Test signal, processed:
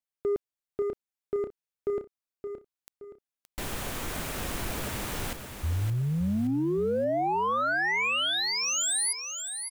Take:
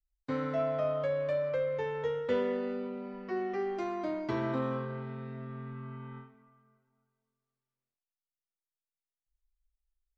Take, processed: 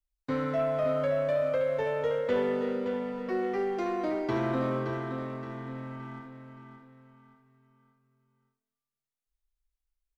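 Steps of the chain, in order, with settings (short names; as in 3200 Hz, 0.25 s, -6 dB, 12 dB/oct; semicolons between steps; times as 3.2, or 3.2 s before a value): dynamic EQ 4900 Hz, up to -4 dB, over -50 dBFS, Q 1.6; sample leveller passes 1; on a send: feedback echo 0.571 s, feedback 38%, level -8 dB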